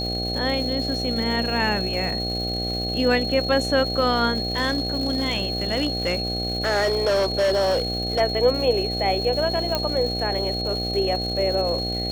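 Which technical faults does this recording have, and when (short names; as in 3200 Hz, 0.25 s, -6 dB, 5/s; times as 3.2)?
buzz 60 Hz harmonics 13 -29 dBFS
crackle 440/s -32 dBFS
tone 4300 Hz -27 dBFS
4.38–8.21 clipped -17 dBFS
9.75 pop -8 dBFS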